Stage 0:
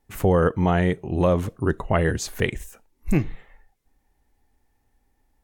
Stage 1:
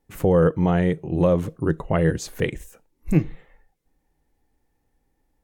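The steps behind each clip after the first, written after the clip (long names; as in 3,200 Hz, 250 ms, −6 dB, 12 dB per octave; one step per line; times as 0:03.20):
thirty-one-band graphic EQ 160 Hz +10 dB, 315 Hz +6 dB, 500 Hz +7 dB
level −3.5 dB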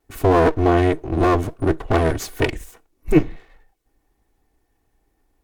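lower of the sound and its delayed copy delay 2.7 ms
level +5 dB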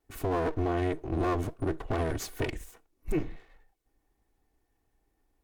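brickwall limiter −13 dBFS, peak gain reduction 10.5 dB
level −7.5 dB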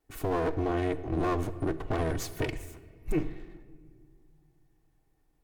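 rectangular room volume 3,600 cubic metres, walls mixed, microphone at 0.51 metres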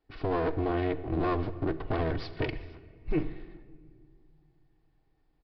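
downsampling to 11,025 Hz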